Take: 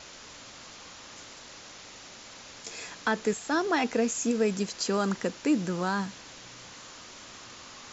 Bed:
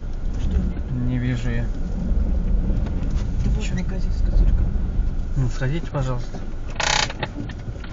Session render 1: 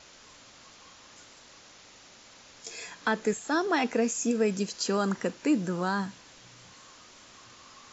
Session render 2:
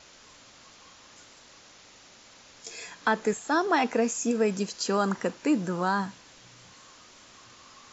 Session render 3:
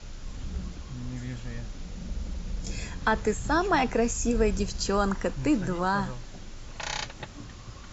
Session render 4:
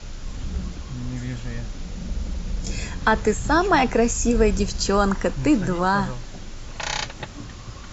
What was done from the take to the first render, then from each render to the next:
noise reduction from a noise print 6 dB
dynamic equaliser 930 Hz, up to +5 dB, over −41 dBFS, Q 1.1
mix in bed −13.5 dB
level +6 dB

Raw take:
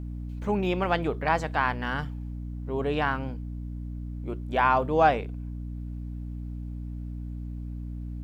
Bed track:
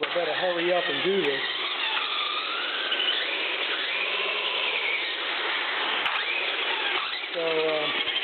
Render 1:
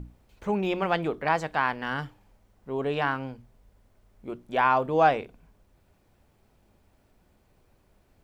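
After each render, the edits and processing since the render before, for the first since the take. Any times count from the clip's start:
mains-hum notches 60/120/180/240/300 Hz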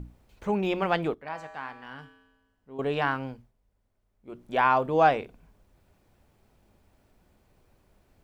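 0:01.14–0:02.79: tuned comb filter 89 Hz, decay 1.2 s, harmonics odd, mix 80%
0:03.32–0:04.45: duck −13 dB, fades 0.21 s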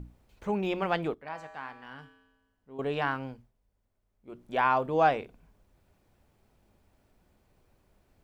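level −3 dB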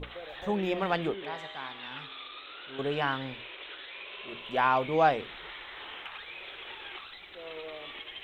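mix in bed track −16.5 dB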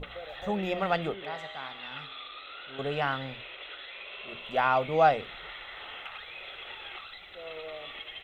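mains-hum notches 60/120 Hz
comb filter 1.5 ms, depth 41%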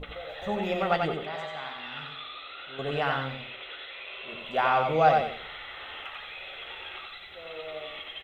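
double-tracking delay 13 ms −10.5 dB
repeating echo 90 ms, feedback 28%, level −4 dB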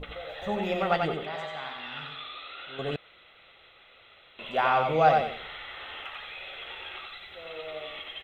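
0:02.96–0:04.39: fill with room tone

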